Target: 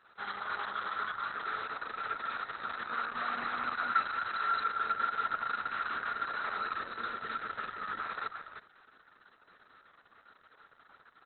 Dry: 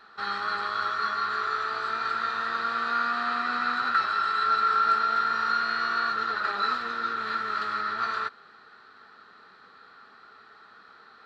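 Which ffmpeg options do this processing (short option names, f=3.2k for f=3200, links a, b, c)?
-af "aecho=1:1:315:0.501,volume=-7.5dB" -ar 48000 -c:a libopus -b:a 6k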